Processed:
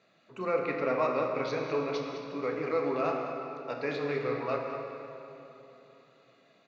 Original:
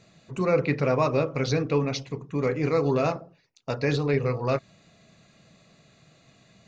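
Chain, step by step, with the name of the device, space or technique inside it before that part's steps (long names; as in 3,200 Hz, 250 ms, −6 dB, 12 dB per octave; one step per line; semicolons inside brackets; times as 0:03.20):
station announcement (band-pass filter 320–3,700 Hz; parametric band 1,300 Hz +5 dB 0.25 octaves; loudspeakers that aren't time-aligned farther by 11 metres −12 dB, 71 metres −11 dB; convolution reverb RT60 3.3 s, pre-delay 35 ms, DRR 2.5 dB)
level −6.5 dB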